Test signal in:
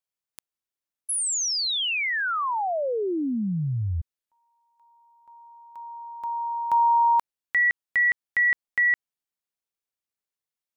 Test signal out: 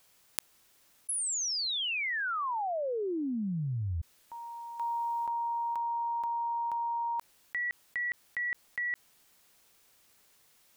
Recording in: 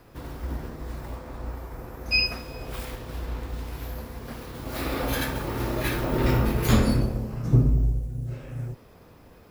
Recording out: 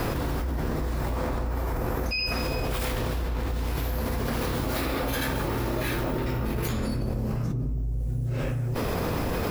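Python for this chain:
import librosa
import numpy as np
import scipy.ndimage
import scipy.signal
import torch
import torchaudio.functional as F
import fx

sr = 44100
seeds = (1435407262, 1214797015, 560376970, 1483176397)

y = fx.env_flatten(x, sr, amount_pct=100)
y = F.gain(torch.from_numpy(y), -13.5).numpy()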